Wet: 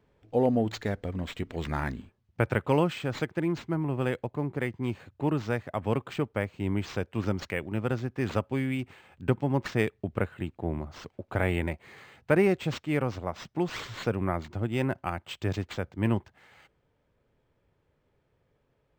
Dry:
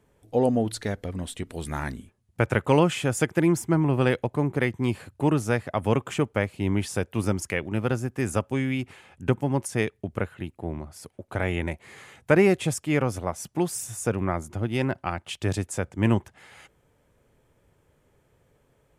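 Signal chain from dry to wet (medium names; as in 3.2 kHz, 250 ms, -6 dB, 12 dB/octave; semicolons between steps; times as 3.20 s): gain riding 2 s; decimation joined by straight lines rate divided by 4×; trim -5 dB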